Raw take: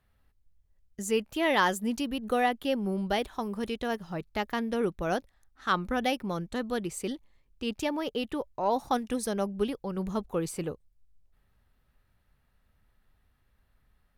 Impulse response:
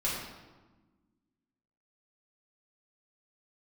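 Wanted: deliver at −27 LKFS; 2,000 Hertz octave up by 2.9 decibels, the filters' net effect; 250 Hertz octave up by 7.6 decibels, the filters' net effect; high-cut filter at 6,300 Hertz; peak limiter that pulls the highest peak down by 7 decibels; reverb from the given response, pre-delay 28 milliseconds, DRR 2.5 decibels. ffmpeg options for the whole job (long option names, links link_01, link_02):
-filter_complex "[0:a]lowpass=6300,equalizer=frequency=250:width_type=o:gain=9,equalizer=frequency=2000:width_type=o:gain=3.5,alimiter=limit=-17.5dB:level=0:latency=1,asplit=2[link_01][link_02];[1:a]atrim=start_sample=2205,adelay=28[link_03];[link_02][link_03]afir=irnorm=-1:irlink=0,volume=-9.5dB[link_04];[link_01][link_04]amix=inputs=2:normalize=0,volume=-1dB"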